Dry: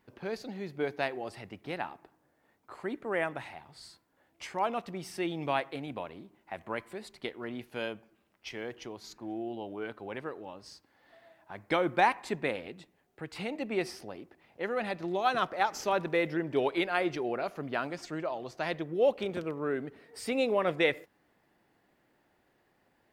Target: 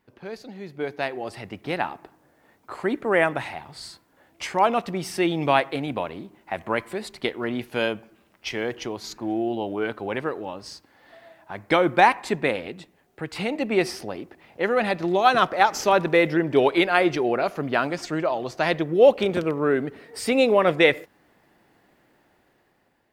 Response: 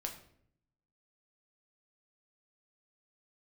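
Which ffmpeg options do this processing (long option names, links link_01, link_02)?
-af "dynaudnorm=framelen=520:gausssize=5:maxgain=11.5dB"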